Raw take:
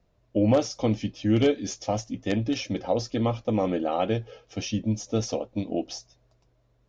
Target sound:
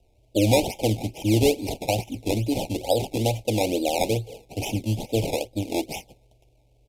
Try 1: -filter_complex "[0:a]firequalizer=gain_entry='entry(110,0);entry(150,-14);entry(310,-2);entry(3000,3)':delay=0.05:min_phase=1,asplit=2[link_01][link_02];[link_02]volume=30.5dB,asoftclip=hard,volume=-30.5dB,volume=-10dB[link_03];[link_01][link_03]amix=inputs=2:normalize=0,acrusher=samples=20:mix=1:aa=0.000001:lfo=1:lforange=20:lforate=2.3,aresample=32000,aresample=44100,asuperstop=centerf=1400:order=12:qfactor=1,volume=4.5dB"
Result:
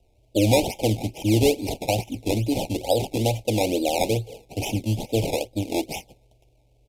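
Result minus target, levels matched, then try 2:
gain into a clipping stage and back: distortion −4 dB
-filter_complex "[0:a]firequalizer=gain_entry='entry(110,0);entry(150,-14);entry(310,-2);entry(3000,3)':delay=0.05:min_phase=1,asplit=2[link_01][link_02];[link_02]volume=42.5dB,asoftclip=hard,volume=-42.5dB,volume=-10dB[link_03];[link_01][link_03]amix=inputs=2:normalize=0,acrusher=samples=20:mix=1:aa=0.000001:lfo=1:lforange=20:lforate=2.3,aresample=32000,aresample=44100,asuperstop=centerf=1400:order=12:qfactor=1,volume=4.5dB"

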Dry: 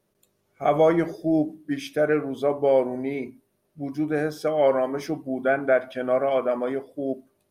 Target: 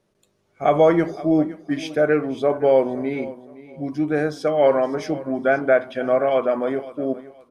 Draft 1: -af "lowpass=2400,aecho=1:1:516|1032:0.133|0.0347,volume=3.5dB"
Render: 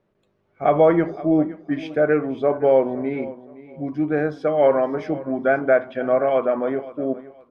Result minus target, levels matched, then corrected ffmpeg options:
8,000 Hz band −16.5 dB
-af "lowpass=7700,aecho=1:1:516|1032:0.133|0.0347,volume=3.5dB"

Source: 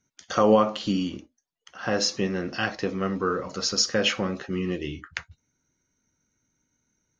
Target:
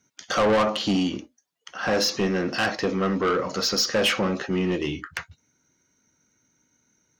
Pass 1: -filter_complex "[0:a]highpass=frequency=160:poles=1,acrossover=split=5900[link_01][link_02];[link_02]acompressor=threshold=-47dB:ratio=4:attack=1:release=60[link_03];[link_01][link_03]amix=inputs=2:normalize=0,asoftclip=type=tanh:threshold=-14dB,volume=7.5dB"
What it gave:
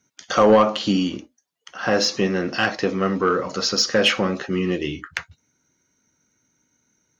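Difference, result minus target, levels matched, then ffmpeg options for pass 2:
soft clipping: distortion −9 dB
-filter_complex "[0:a]highpass=frequency=160:poles=1,acrossover=split=5900[link_01][link_02];[link_02]acompressor=threshold=-47dB:ratio=4:attack=1:release=60[link_03];[link_01][link_03]amix=inputs=2:normalize=0,asoftclip=type=tanh:threshold=-24.5dB,volume=7.5dB"

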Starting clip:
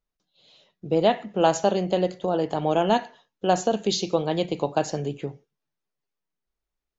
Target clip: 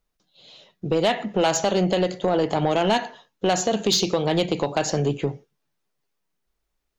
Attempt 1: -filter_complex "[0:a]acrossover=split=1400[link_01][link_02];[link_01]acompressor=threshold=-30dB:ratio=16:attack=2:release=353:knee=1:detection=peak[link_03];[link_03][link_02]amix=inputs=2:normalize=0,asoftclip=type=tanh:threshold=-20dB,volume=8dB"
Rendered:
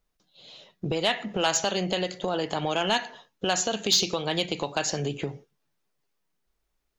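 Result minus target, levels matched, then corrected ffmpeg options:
downward compressor: peak gain reduction +9.5 dB
-filter_complex "[0:a]acrossover=split=1400[link_01][link_02];[link_01]acompressor=threshold=-20dB:ratio=16:attack=2:release=353:knee=1:detection=peak[link_03];[link_03][link_02]amix=inputs=2:normalize=0,asoftclip=type=tanh:threshold=-20dB,volume=8dB"

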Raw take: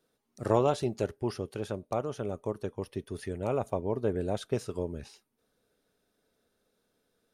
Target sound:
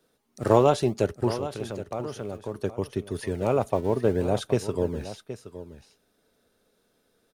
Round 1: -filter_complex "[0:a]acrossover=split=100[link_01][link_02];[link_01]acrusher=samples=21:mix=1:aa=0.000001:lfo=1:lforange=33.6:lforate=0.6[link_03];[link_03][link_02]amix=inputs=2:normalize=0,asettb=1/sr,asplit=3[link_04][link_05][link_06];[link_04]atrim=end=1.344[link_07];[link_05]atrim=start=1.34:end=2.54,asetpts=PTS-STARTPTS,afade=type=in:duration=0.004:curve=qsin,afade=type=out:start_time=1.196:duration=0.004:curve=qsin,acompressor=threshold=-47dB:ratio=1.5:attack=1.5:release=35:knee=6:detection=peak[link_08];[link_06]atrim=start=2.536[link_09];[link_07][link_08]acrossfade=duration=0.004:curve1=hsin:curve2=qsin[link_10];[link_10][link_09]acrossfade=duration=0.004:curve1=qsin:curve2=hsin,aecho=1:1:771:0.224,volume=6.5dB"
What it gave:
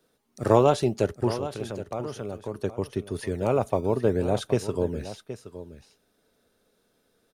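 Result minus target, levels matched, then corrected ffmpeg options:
sample-and-hold swept by an LFO: distortion −9 dB
-filter_complex "[0:a]acrossover=split=100[link_01][link_02];[link_01]acrusher=samples=54:mix=1:aa=0.000001:lfo=1:lforange=86.4:lforate=0.6[link_03];[link_03][link_02]amix=inputs=2:normalize=0,asettb=1/sr,asplit=3[link_04][link_05][link_06];[link_04]atrim=end=1.344[link_07];[link_05]atrim=start=1.34:end=2.54,asetpts=PTS-STARTPTS,afade=type=in:duration=0.004:curve=qsin,afade=type=out:start_time=1.196:duration=0.004:curve=qsin,acompressor=threshold=-47dB:ratio=1.5:attack=1.5:release=35:knee=6:detection=peak[link_08];[link_06]atrim=start=2.536[link_09];[link_07][link_08]acrossfade=duration=0.004:curve1=hsin:curve2=qsin[link_10];[link_10][link_09]acrossfade=duration=0.004:curve1=qsin:curve2=hsin,aecho=1:1:771:0.224,volume=6.5dB"

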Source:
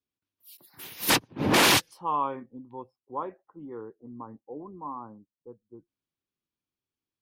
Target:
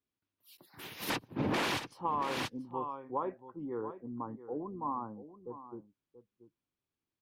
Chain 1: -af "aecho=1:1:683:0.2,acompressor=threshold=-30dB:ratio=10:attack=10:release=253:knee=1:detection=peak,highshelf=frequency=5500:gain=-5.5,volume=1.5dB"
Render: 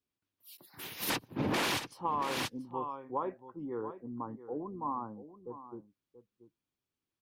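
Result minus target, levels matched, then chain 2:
8,000 Hz band +4.5 dB
-af "aecho=1:1:683:0.2,acompressor=threshold=-30dB:ratio=10:attack=10:release=253:knee=1:detection=peak,highshelf=frequency=5500:gain=-13.5,volume=1.5dB"

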